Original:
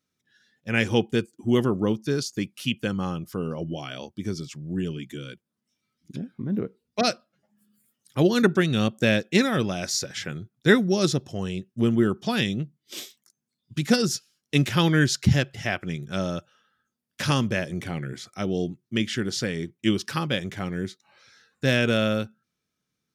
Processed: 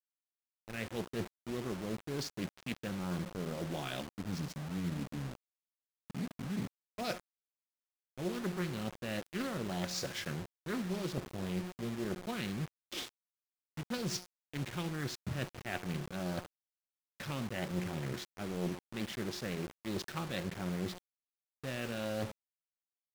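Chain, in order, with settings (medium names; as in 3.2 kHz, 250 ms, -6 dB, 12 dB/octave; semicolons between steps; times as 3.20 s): median filter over 5 samples; spectral selection erased 4.01–6.92 s, 310–3600 Hz; reverse; compression 20:1, threshold -34 dBFS, peak gain reduction 23.5 dB; reverse; feedback comb 180 Hz, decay 1 s, mix 70%; hysteresis with a dead band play -56 dBFS; on a send: tape echo 70 ms, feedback 20%, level -16 dB, low-pass 1.1 kHz; on the sum: bit crusher 9-bit; loudspeaker Doppler distortion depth 0.52 ms; trim +9.5 dB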